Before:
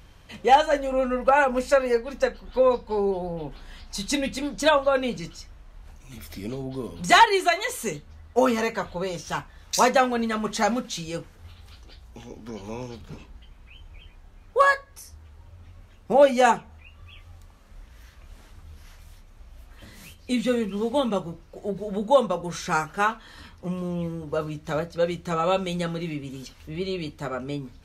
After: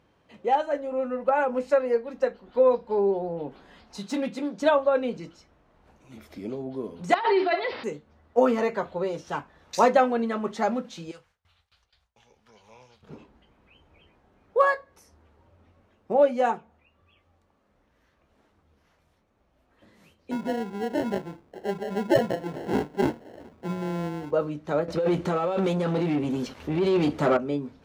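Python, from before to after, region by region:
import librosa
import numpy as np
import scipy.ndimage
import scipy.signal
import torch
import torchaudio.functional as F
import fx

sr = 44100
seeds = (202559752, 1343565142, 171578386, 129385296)

y = fx.chain(x, sr, fx.highpass(hz=120.0, slope=24),
    fx.overload_stage(gain_db=23.0), at=(3.97, 4.6))
y = fx.chain(y, sr, fx.room_flutter(wall_m=10.6, rt60_s=0.34),
    fx.resample_bad(factor=4, down='none', up='filtered'),
    fx.over_compress(threshold_db=-21.0, ratio=-1.0), at=(7.14, 7.84))
y = fx.chain(y, sr, fx.gate_hold(open_db=-37.0, close_db=-43.0, hold_ms=71.0, range_db=-21, attack_ms=1.4, release_ms=100.0),
    fx.tone_stack(knobs='10-0-10'),
    fx.doppler_dist(depth_ms=0.15), at=(11.11, 13.03))
y = fx.chain(y, sr, fx.peak_eq(hz=570.0, db=-5.0, octaves=0.28),
    fx.sample_hold(seeds[0], rate_hz=1200.0, jitter_pct=0), at=(20.31, 24.31))
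y = fx.chain(y, sr, fx.over_compress(threshold_db=-30.0, ratio=-1.0),
    fx.leveller(passes=3), at=(24.88, 27.37))
y = fx.rider(y, sr, range_db=10, speed_s=2.0)
y = scipy.signal.sosfilt(scipy.signal.butter(2, 340.0, 'highpass', fs=sr, output='sos'), y)
y = fx.tilt_eq(y, sr, slope=-4.0)
y = F.gain(torch.from_numpy(y), -3.5).numpy()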